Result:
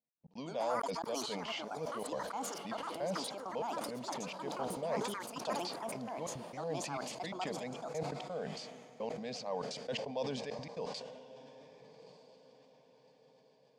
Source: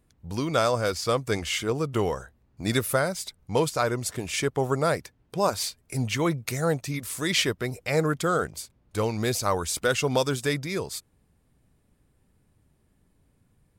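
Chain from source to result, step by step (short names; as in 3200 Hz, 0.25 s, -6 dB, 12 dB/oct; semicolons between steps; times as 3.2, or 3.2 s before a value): reverse; compressor 5:1, threshold -32 dBFS, peak gain reduction 13 dB; reverse; gate -55 dBFS, range -22 dB; speaker cabinet 230–4200 Hz, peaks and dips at 290 Hz -4 dB, 2100 Hz -4 dB, 3700 Hz -9 dB; fixed phaser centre 360 Hz, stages 6; step gate "x.x.xxxxx." 170 bpm -60 dB; on a send: diffused feedback echo 1.226 s, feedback 41%, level -14 dB; on the sum: echoes that change speed 0.209 s, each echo +6 st, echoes 2; sustainer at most 38 dB/s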